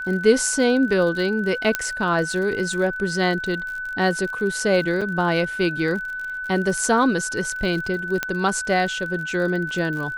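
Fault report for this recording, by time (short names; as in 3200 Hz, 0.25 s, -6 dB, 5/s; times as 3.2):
crackle 52/s -30 dBFS
tone 1500 Hz -27 dBFS
1.75 pop -4 dBFS
5.01–5.02 gap 5.7 ms
8.23 pop -7 dBFS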